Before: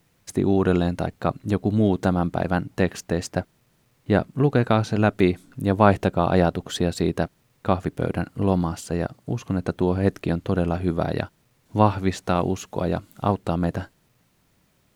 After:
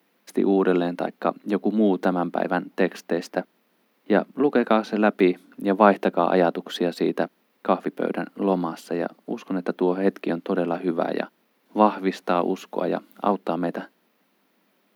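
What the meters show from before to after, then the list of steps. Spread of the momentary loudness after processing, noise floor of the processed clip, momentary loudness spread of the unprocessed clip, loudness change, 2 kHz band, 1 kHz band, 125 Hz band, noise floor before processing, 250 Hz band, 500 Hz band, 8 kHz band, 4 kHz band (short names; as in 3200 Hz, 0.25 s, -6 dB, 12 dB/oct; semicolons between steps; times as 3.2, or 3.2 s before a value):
9 LU, -67 dBFS, 9 LU, -0.5 dB, +1.0 dB, +1.5 dB, -11.0 dB, -65 dBFS, -0.5 dB, +1.5 dB, n/a, -1.5 dB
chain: steep high-pass 200 Hz 48 dB/oct; bell 7600 Hz -13.5 dB 0.99 oct; gain +1.5 dB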